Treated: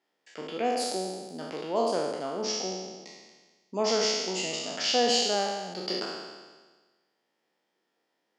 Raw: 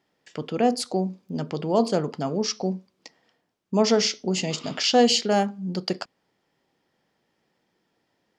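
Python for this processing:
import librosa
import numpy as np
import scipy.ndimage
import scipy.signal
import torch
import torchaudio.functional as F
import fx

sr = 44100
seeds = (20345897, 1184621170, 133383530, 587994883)

y = fx.spec_trails(x, sr, decay_s=1.39)
y = scipy.signal.sosfilt(scipy.signal.butter(2, 310.0, 'highpass', fs=sr, output='sos'), y)
y = y * librosa.db_to_amplitude(-7.5)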